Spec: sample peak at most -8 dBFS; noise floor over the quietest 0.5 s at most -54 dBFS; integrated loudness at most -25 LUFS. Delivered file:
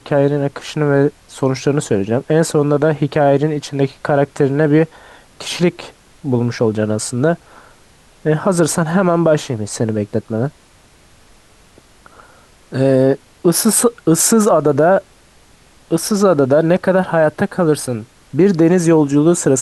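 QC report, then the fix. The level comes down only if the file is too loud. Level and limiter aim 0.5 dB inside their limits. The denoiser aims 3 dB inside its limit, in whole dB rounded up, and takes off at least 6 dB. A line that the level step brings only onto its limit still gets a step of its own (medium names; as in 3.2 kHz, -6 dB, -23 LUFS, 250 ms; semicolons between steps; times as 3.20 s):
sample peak -2.5 dBFS: fail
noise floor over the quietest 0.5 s -48 dBFS: fail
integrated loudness -15.5 LUFS: fail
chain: trim -10 dB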